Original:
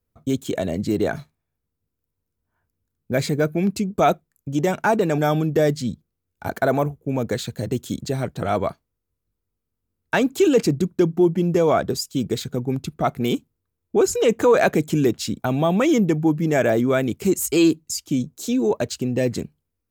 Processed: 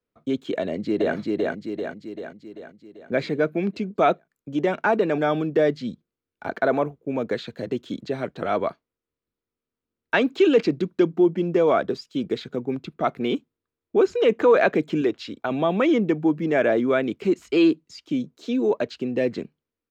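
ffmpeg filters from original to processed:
-filter_complex "[0:a]asplit=2[s0][s1];[s1]afade=t=in:st=0.61:d=0.01,afade=t=out:st=1.15:d=0.01,aecho=0:1:390|780|1170|1560|1950|2340|2730|3120:0.841395|0.462767|0.254522|0.139987|0.0769929|0.0423461|0.0232904|0.0128097[s2];[s0][s2]amix=inputs=2:normalize=0,asettb=1/sr,asplit=3[s3][s4][s5];[s3]atrim=end=10.144[s6];[s4]atrim=start=10.14:end=11.08,asetpts=PTS-STARTPTS,afade=t=in:d=0.004:c=qsin,afade=t=out:st=0.936:d=0.004:c=qsin,highshelf=f=2300:g=5.5[s7];[s5]atrim=start=11.076[s8];[s6][s7]acrossfade=d=0.004:c1=hsin:c2=qsin[s9];[s9][s8]acrossfade=d=0.004:c1=qsin:c2=hsin,asettb=1/sr,asplit=3[s10][s11][s12];[s10]atrim=end=15.014[s13];[s11]atrim=start=15.01:end=15.51,asetpts=PTS-STARTPTS,afade=t=in:d=0.004:c=qsin,afade=t=out:st=0.496:d=0.004:c=qsin,equalizer=f=180:w=1.5:g=-10.5[s14];[s12]atrim=start=15.506[s15];[s13][s14]acrossfade=d=0.004:c1=hsin:c2=qsin[s16];[s16][s15]acrossfade=d=0.004:c1=qsin:c2=hsin,equalizer=f=810:t=o:w=0.45:g=-3.5,acrossover=split=4800[s17][s18];[s18]acompressor=threshold=0.00501:ratio=4:attack=1:release=60[s19];[s17][s19]amix=inputs=2:normalize=0,acrossover=split=210 4600:gain=0.158 1 0.112[s20][s21][s22];[s20][s21][s22]amix=inputs=3:normalize=0"

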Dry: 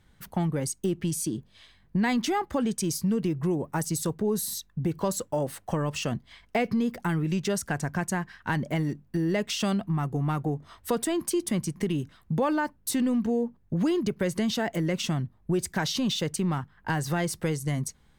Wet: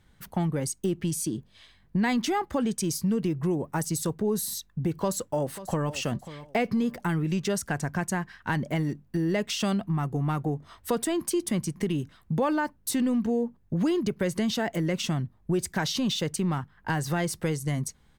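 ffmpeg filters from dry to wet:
-filter_complex "[0:a]asplit=2[s0][s1];[s1]afade=t=in:st=5:d=0.01,afade=t=out:st=5.92:d=0.01,aecho=0:1:540|1080|1620:0.188365|0.0470912|0.0117728[s2];[s0][s2]amix=inputs=2:normalize=0"

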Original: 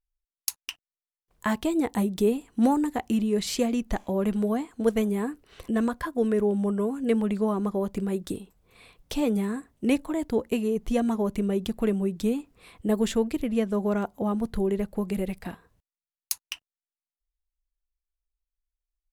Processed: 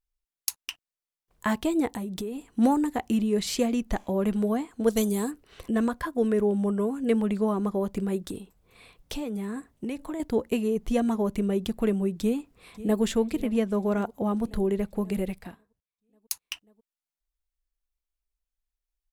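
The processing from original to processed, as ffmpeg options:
-filter_complex "[0:a]asettb=1/sr,asplit=3[s0][s1][s2];[s0]atrim=end=1.944[s3];[s1]atrim=start=1.94:end=2.49,asetpts=PTS-STARTPTS,afade=t=in:d=0.004:c=qsin,afade=t=out:st=0.546:d=0.004:c=qsin,acompressor=threshold=0.0355:ratio=10:attack=3.2:release=140:knee=1:detection=peak[s4];[s2]atrim=start=2.486[s5];[s3][s4]acrossfade=d=0.004:c1=hsin:c2=qsin[s6];[s6][s5]acrossfade=d=0.004:c1=qsin:c2=hsin,asplit=3[s7][s8][s9];[s7]afade=t=out:st=4.89:d=0.02[s10];[s8]highshelf=f=3200:t=q:w=1.5:g=10.5,afade=t=in:st=4.89:d=0.02,afade=t=out:st=5.3:d=0.02[s11];[s9]afade=t=in:st=5.3:d=0.02[s12];[s10][s11][s12]amix=inputs=3:normalize=0,asettb=1/sr,asplit=3[s13][s14][s15];[s13]atrim=end=8.234[s16];[s14]atrim=start=8.23:end=10.2,asetpts=PTS-STARTPTS,afade=t=in:d=0.004:c=qsin,afade=t=out:st=1.966:d=0.004:c=qsin,acompressor=threshold=0.0355:ratio=6:attack=3.2:release=140:knee=1:detection=peak[s17];[s15]atrim=start=10.196[s18];[s16][s17]acrossfade=d=0.004:c1=hsin:c2=qsin[s19];[s19][s18]acrossfade=d=0.004:c1=qsin:c2=hsin,asplit=2[s20][s21];[s21]afade=t=in:st=12.2:d=0.01,afade=t=out:st=13.02:d=0.01,aecho=0:1:540|1080|1620|2160|2700|3240|3780:0.158489|0.103018|0.0669617|0.0435251|0.0282913|0.0183894|0.0119531[s22];[s20][s22]amix=inputs=2:normalize=0,asplit=3[s23][s24][s25];[s23]atrim=end=15.65,asetpts=PTS-STARTPTS,afade=t=out:st=15.25:d=0.4:silence=0.149624[s26];[s24]atrim=start=15.65:end=16.03,asetpts=PTS-STARTPTS,volume=0.15[s27];[s25]atrim=start=16.03,asetpts=PTS-STARTPTS,afade=t=in:d=0.4:silence=0.149624[s28];[s26][s27][s28]concat=n=3:v=0:a=1"

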